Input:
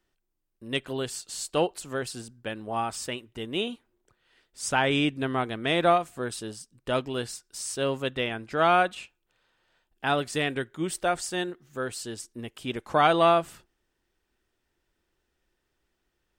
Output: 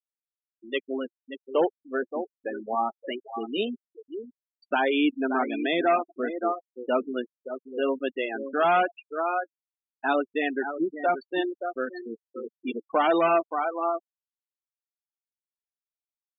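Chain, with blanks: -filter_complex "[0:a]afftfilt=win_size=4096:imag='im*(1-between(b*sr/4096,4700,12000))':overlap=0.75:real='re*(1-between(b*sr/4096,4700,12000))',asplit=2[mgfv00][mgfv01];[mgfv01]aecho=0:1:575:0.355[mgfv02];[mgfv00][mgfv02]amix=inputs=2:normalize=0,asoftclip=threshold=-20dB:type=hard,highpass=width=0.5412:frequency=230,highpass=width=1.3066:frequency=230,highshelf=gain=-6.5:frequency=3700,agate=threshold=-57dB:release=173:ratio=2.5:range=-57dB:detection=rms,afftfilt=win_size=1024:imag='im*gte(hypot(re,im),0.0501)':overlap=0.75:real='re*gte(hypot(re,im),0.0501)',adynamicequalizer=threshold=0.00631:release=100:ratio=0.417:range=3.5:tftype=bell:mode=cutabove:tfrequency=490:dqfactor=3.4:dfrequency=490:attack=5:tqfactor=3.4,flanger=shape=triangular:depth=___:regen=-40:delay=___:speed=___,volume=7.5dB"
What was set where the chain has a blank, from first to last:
2.9, 1.9, 1.2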